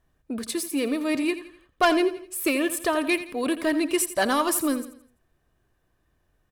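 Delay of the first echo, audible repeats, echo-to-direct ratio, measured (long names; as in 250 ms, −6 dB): 84 ms, 3, −12.0 dB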